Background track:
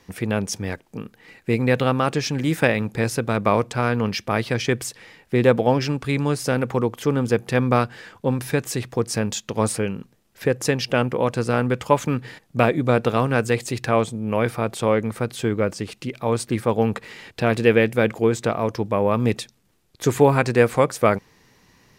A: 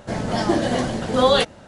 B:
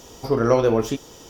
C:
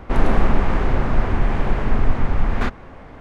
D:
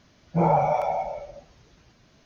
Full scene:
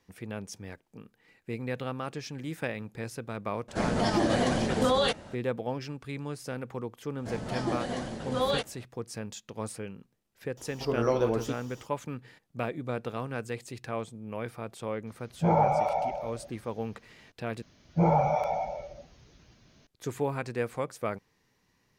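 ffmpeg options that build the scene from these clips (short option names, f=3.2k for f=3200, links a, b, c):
-filter_complex "[1:a]asplit=2[a][b];[4:a]asplit=2[c][d];[0:a]volume=-15dB[e];[a]alimiter=level_in=13dB:limit=-1dB:release=50:level=0:latency=1[f];[d]equalizer=f=940:w=0.59:g=-4[g];[e]asplit=2[h][i];[h]atrim=end=17.624[j];[g]atrim=end=2.25,asetpts=PTS-STARTPTS,volume=-0.5dB[k];[i]atrim=start=19.866[l];[f]atrim=end=1.67,asetpts=PTS-STARTPTS,volume=-15.5dB,afade=t=in:d=0.004:c=hsin,afade=t=out:st=1.666:d=0.004:c=hsin,adelay=3680[m];[b]atrim=end=1.67,asetpts=PTS-STARTPTS,volume=-12dB,afade=t=in:d=0.004:c=hsin,afade=t=out:st=1.666:d=0.004:c=hsin,adelay=7180[n];[2:a]atrim=end=1.29,asetpts=PTS-STARTPTS,volume=-9dB,afade=t=in:d=0.004:c=hsin,afade=t=out:st=1.286:d=0.004:c=hsin,adelay=10570[o];[c]atrim=end=2.25,asetpts=PTS-STARTPTS,volume=-3dB,afade=t=in:d=0.004:c=hsin,afade=t=out:st=2.246:d=0.004:c=hsin,adelay=15070[p];[j][k]acrossfade=d=0.004:c1=hsin:c2=hsin[q];[q][l]acrossfade=d=0.004:c1=hsin:c2=hsin[r];[r][m][n][o][p]amix=inputs=5:normalize=0"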